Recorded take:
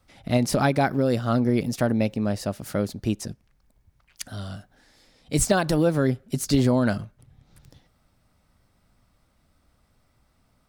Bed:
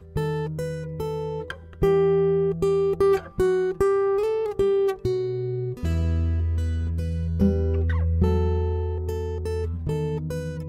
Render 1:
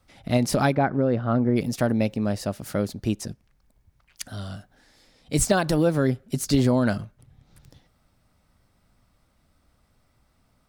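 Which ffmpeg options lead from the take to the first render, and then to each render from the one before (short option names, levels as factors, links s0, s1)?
-filter_complex "[0:a]asplit=3[s0][s1][s2];[s0]afade=t=out:st=0.74:d=0.02[s3];[s1]lowpass=1800,afade=t=in:st=0.74:d=0.02,afade=t=out:st=1.55:d=0.02[s4];[s2]afade=t=in:st=1.55:d=0.02[s5];[s3][s4][s5]amix=inputs=3:normalize=0"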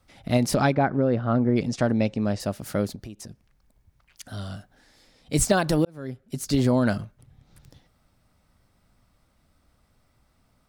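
-filter_complex "[0:a]asettb=1/sr,asplit=3[s0][s1][s2];[s0]atrim=end=0.544[s3];[s1]atrim=start=0.54:end=2.4,asetpts=PTS-STARTPTS,afade=t=in:d=0.004:c=qsin,afade=t=out:st=1.856:d=0.004:c=qsin,lowpass=f=7800:w=0.5412,lowpass=f=7800:w=1.3066[s4];[s2]atrim=start=2.396[s5];[s3][s4]acrossfade=d=0.004:c1=hsin:c2=qsin[s6];[s6][s5]acrossfade=d=0.004:c1=qsin:c2=hsin,asettb=1/sr,asplit=3[s7][s8][s9];[s7]atrim=end=2.954[s10];[s8]atrim=start=2.95:end=4.28,asetpts=PTS-STARTPTS,afade=t=in:d=0.004:c=qsin,afade=t=out:st=1.326:d=0.004:c=qsin,acompressor=threshold=0.0141:ratio=5:attack=3.2:release=140:knee=1:detection=peak[s11];[s9]atrim=start=4.276[s12];[s10][s11]acrossfade=d=0.004:c1=hsin:c2=qsin[s13];[s13][s12]acrossfade=d=0.004:c1=qsin:c2=hsin,asplit=2[s14][s15];[s14]atrim=end=5.85,asetpts=PTS-STARTPTS,afade=t=out:st=5.846:d=0.004:c=hsin[s16];[s15]atrim=start=5.85,asetpts=PTS-STARTPTS,afade=t=in:d=0.9[s17];[s16][s17]concat=n=2:v=0:a=1"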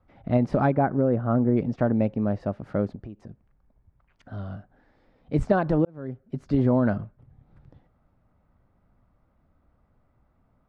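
-af "lowpass=1300"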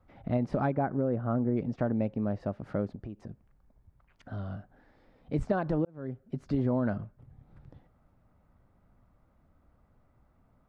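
-af "acompressor=threshold=0.0141:ratio=1.5"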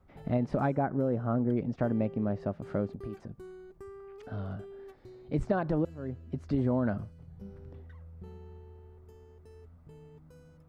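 -filter_complex "[1:a]volume=0.0501[s0];[0:a][s0]amix=inputs=2:normalize=0"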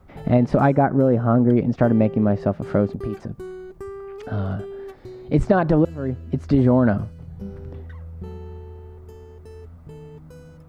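-af "volume=3.98,alimiter=limit=0.708:level=0:latency=1"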